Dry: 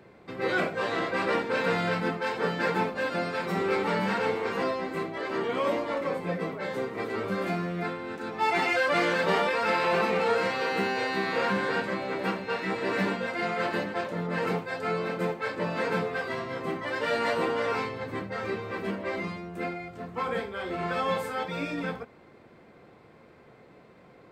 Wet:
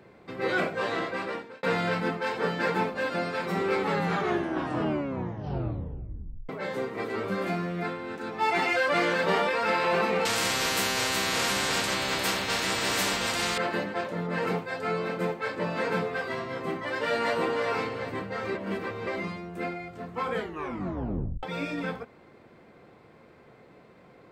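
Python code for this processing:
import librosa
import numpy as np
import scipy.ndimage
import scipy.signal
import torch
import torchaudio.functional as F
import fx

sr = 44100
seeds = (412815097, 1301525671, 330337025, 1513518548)

y = fx.spectral_comp(x, sr, ratio=4.0, at=(10.25, 13.58))
y = fx.echo_throw(y, sr, start_s=17.13, length_s=0.57, ms=390, feedback_pct=45, wet_db=-10.5)
y = fx.edit(y, sr, fx.fade_out_span(start_s=0.91, length_s=0.72),
    fx.tape_stop(start_s=3.79, length_s=2.7),
    fx.reverse_span(start_s=18.55, length_s=0.52),
    fx.tape_stop(start_s=20.34, length_s=1.09), tone=tone)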